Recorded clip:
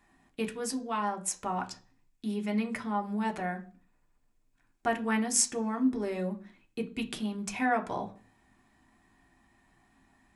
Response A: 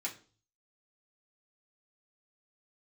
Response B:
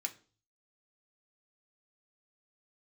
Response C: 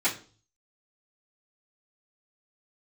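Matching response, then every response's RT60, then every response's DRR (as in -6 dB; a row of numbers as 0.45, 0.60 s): B; 0.40, 0.40, 0.40 s; -4.5, 3.0, -13.5 dB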